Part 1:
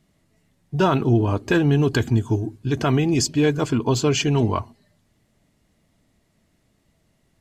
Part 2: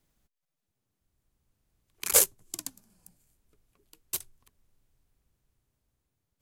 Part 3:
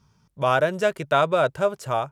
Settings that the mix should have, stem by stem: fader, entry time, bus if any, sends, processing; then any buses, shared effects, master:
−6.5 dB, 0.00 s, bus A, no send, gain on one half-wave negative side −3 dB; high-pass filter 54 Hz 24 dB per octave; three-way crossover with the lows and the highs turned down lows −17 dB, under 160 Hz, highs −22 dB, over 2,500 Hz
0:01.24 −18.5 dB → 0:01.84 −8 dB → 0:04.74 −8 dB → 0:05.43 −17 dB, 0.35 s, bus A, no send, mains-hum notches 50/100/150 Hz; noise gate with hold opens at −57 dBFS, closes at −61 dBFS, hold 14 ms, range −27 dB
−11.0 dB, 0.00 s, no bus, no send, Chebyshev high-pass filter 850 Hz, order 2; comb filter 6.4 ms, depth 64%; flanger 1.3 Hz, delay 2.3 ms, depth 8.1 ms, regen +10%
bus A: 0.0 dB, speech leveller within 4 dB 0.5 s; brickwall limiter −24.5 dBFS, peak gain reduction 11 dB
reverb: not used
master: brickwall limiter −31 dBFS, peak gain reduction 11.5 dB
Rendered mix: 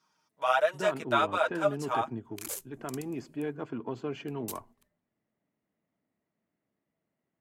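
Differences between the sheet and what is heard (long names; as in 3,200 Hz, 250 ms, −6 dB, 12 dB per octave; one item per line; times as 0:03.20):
stem 1 −6.5 dB → −15.5 dB
stem 3 −11.0 dB → −2.0 dB
master: missing brickwall limiter −31 dBFS, peak gain reduction 11.5 dB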